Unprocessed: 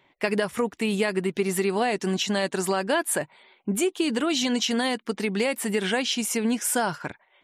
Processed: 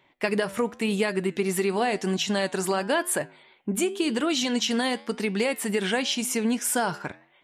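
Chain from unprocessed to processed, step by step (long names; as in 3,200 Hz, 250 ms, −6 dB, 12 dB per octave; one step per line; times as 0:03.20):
flanger 0.93 Hz, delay 8.6 ms, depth 4.3 ms, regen −87%
level +4 dB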